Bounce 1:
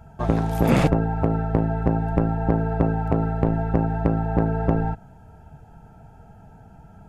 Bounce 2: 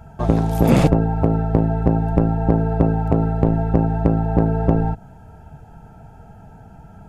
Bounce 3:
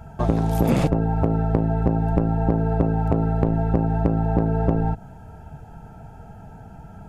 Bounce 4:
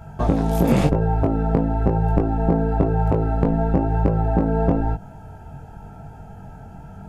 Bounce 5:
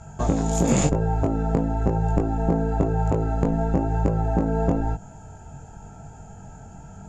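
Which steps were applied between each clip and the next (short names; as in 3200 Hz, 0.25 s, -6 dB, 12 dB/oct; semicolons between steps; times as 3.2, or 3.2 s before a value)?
dynamic EQ 1700 Hz, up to -6 dB, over -41 dBFS, Q 0.8; gain +4.5 dB
compressor 3:1, threshold -18 dBFS, peak gain reduction 8 dB; gain +1 dB
chorus 0.98 Hz, delay 20 ms, depth 2.4 ms; gain +5 dB
synth low-pass 7000 Hz, resonance Q 15; gain -3 dB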